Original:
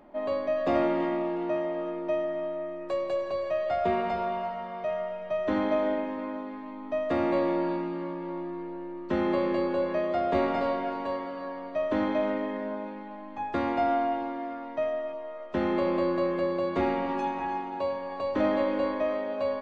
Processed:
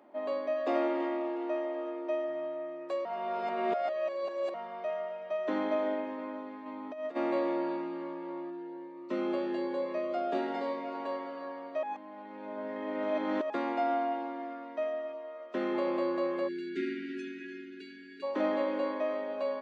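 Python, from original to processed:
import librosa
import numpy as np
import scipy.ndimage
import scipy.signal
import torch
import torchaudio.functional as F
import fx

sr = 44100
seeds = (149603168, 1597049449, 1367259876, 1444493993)

y = fx.brickwall_highpass(x, sr, low_hz=230.0, at=(0.54, 2.27))
y = fx.over_compress(y, sr, threshold_db=-32.0, ratio=-0.5, at=(6.65, 7.15), fade=0.02)
y = fx.notch_cascade(y, sr, direction='rising', hz=1.1, at=(8.49, 10.93), fade=0.02)
y = fx.notch(y, sr, hz=860.0, q=6.9, at=(14.42, 15.75))
y = fx.brickwall_bandstop(y, sr, low_hz=430.0, high_hz=1400.0, at=(16.47, 18.22), fade=0.02)
y = fx.edit(y, sr, fx.reverse_span(start_s=3.05, length_s=1.49),
    fx.reverse_span(start_s=11.83, length_s=1.67), tone=tone)
y = scipy.signal.sosfilt(scipy.signal.butter(4, 240.0, 'highpass', fs=sr, output='sos'), y)
y = y * 10.0 ** (-4.0 / 20.0)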